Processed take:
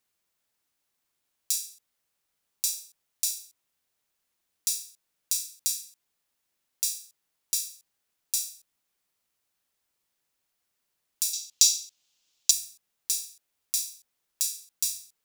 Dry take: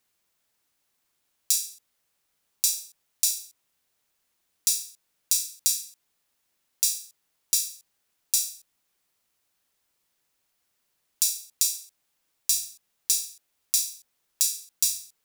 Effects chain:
0:11.33–0:12.51: flat-topped bell 4,400 Hz +12.5 dB
level −4.5 dB

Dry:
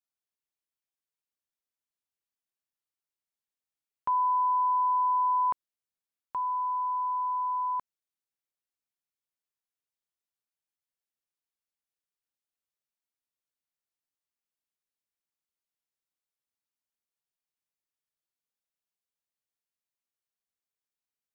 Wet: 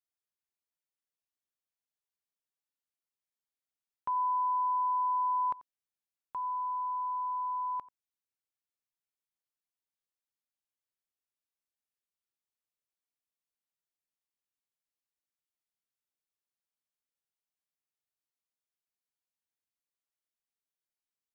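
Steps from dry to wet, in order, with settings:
single-tap delay 89 ms −19.5 dB
level −5 dB

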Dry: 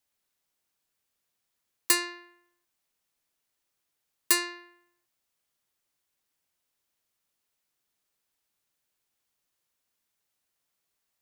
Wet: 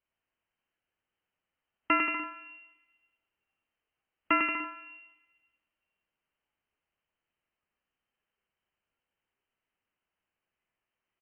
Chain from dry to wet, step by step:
on a send: bouncing-ball delay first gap 100 ms, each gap 0.8×, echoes 5
on the sum: noise reduction from a noise print of the clip's start 6 dB
rectangular room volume 1,400 cubic metres, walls mixed, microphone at 0.33 metres
voice inversion scrambler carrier 3,100 Hz
level +3.5 dB

